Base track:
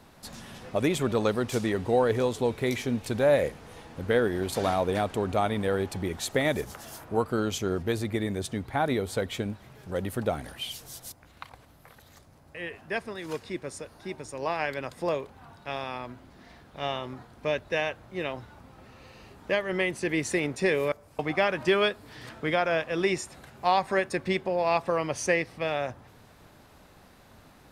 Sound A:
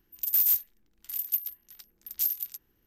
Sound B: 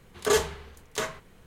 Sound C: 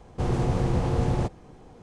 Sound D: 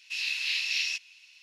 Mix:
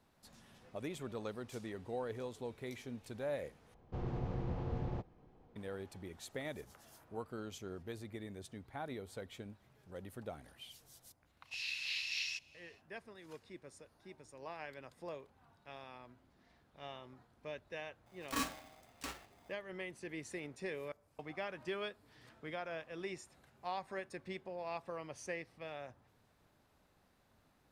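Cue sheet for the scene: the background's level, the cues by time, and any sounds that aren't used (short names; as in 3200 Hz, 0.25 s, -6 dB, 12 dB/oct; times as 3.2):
base track -17.5 dB
3.74 replace with C -14.5 dB + air absorption 190 m
11.41 add D -10 dB, fades 0.10 s
18.06 add B -14.5 dB + polarity switched at an audio rate 700 Hz
not used: A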